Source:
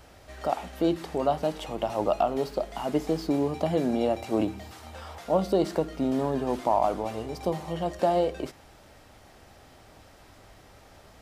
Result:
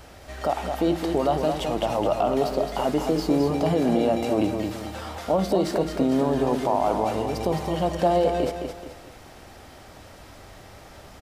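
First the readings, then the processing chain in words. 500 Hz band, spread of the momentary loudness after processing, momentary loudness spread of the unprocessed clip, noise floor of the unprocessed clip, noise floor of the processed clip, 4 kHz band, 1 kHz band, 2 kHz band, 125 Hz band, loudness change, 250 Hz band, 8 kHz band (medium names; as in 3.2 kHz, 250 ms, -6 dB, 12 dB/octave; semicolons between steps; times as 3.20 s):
+4.0 dB, 9 LU, 8 LU, -54 dBFS, -46 dBFS, +6.0 dB, +3.5 dB, +5.5 dB, +5.5 dB, +4.0 dB, +4.5 dB, +6.5 dB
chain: peak limiter -19 dBFS, peak gain reduction 7 dB; feedback delay 215 ms, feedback 37%, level -6 dB; trim +6 dB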